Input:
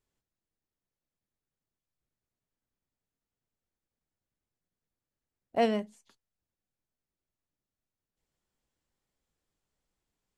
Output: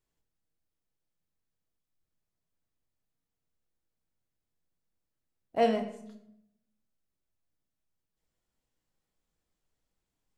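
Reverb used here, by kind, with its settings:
rectangular room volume 190 cubic metres, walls mixed, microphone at 0.6 metres
level −2 dB

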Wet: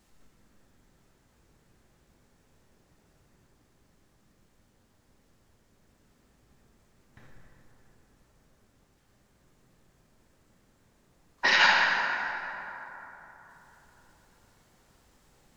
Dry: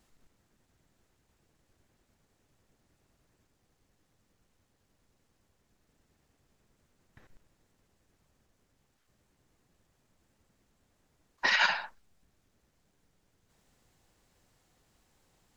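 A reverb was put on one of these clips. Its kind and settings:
dense smooth reverb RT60 3.6 s, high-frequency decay 0.45×, DRR −2.5 dB
level +2.5 dB

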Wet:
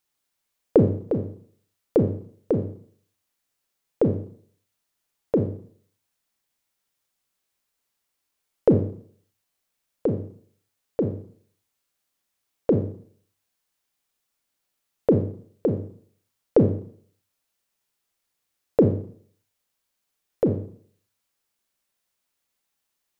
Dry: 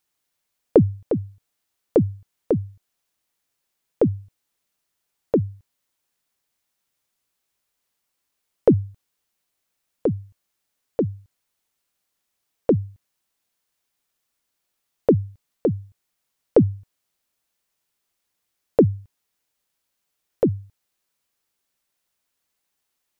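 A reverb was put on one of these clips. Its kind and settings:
four-comb reverb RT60 0.54 s, combs from 28 ms, DRR 5 dB
level −2.5 dB

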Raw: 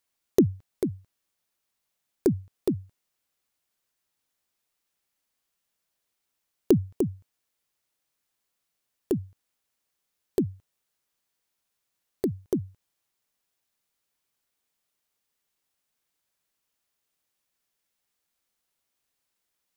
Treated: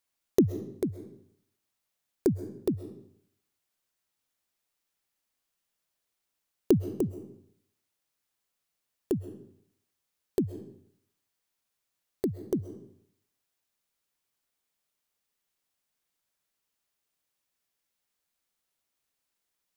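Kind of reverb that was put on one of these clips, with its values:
comb and all-pass reverb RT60 0.68 s, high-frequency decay 0.9×, pre-delay 90 ms, DRR 12 dB
level −2.5 dB

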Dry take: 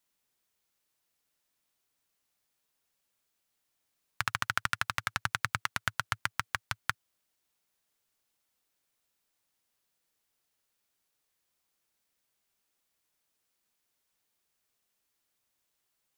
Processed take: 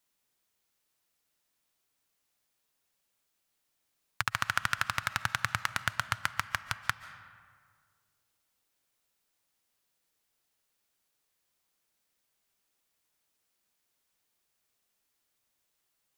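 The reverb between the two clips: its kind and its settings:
comb and all-pass reverb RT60 1.9 s, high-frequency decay 0.55×, pre-delay 100 ms, DRR 13.5 dB
level +1 dB

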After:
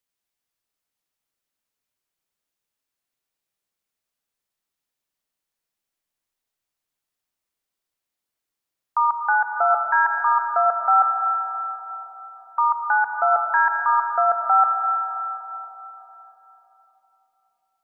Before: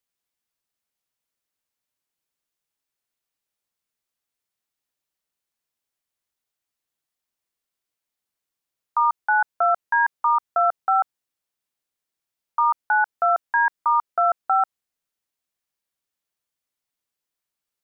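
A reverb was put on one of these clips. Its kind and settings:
comb and all-pass reverb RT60 4 s, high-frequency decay 0.4×, pre-delay 55 ms, DRR 4.5 dB

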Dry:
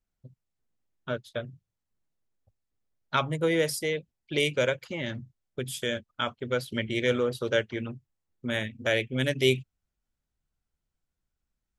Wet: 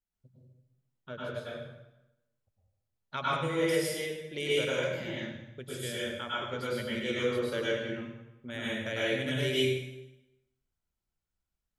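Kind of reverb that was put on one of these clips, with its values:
dense smooth reverb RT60 0.94 s, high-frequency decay 0.85×, pre-delay 90 ms, DRR −7.5 dB
level −11 dB

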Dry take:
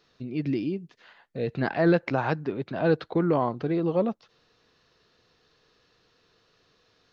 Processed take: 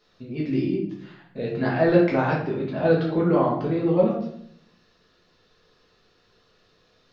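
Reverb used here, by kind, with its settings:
rectangular room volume 120 cubic metres, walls mixed, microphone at 1.4 metres
level −3 dB

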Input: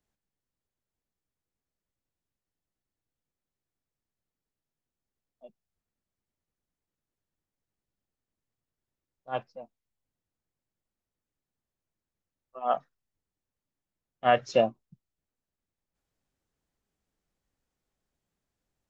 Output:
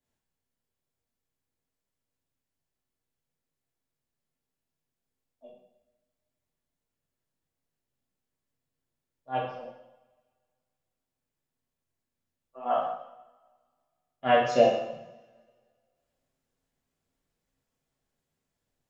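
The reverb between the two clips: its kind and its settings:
coupled-rooms reverb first 0.8 s, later 2 s, from −23 dB, DRR −7.5 dB
level −6 dB

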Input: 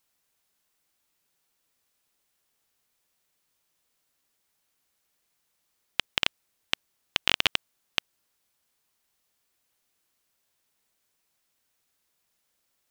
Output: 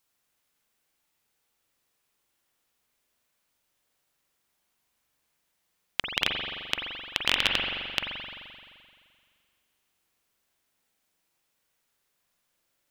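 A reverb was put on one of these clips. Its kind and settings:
spring reverb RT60 2.1 s, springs 43 ms, chirp 75 ms, DRR 0 dB
level −1.5 dB

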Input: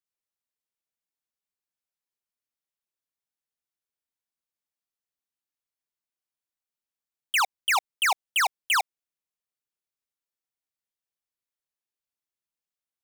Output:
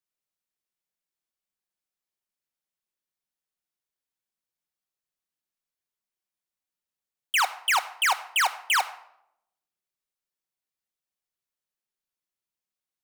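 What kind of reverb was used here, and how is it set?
rectangular room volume 2,200 cubic metres, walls furnished, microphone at 1 metre

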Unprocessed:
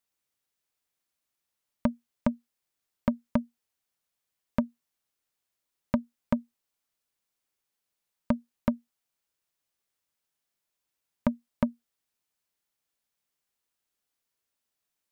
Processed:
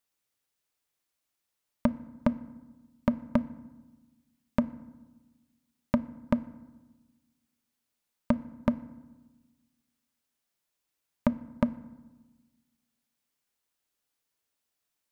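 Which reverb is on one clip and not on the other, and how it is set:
feedback delay network reverb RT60 1.2 s, low-frequency decay 1.35×, high-frequency decay 0.5×, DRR 14.5 dB
level +1 dB

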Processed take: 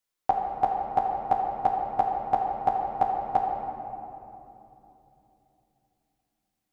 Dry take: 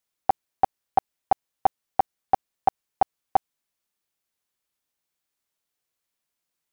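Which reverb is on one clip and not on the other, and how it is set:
rectangular room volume 150 cubic metres, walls hard, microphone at 0.43 metres
level −3 dB

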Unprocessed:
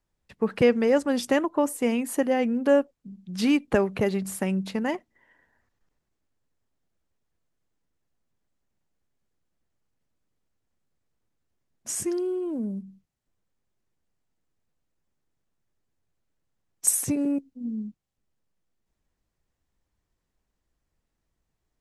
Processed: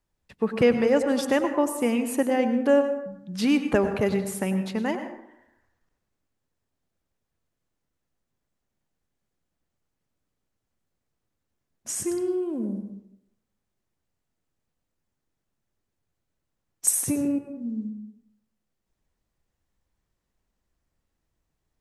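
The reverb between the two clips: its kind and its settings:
dense smooth reverb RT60 0.79 s, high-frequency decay 0.5×, pre-delay 85 ms, DRR 7.5 dB

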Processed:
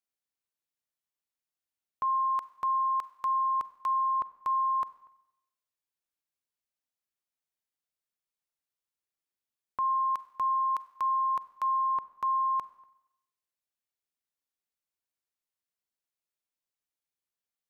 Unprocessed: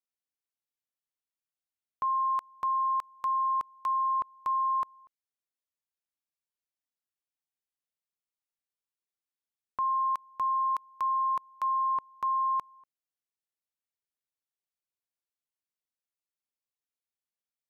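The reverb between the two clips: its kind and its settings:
four-comb reverb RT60 0.9 s, combs from 32 ms, DRR 16.5 dB

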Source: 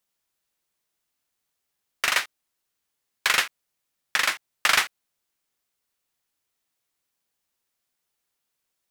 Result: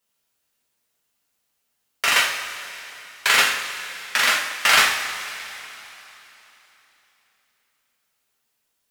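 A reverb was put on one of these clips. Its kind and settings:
coupled-rooms reverb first 0.57 s, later 3.5 s, from −14 dB, DRR −5 dB

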